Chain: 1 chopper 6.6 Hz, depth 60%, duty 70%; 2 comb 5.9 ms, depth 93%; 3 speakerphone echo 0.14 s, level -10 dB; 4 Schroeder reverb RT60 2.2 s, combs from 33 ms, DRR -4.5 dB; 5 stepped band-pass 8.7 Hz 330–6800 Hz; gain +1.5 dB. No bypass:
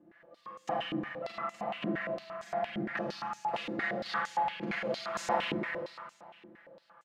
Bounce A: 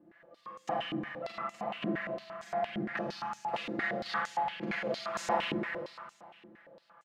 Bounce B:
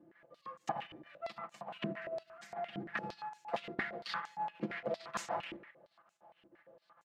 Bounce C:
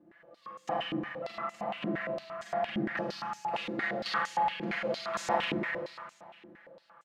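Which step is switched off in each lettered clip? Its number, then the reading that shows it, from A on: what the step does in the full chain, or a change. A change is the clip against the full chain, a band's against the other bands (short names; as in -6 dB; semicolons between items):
3, momentary loudness spread change -3 LU; 4, momentary loudness spread change -7 LU; 1, momentary loudness spread change -3 LU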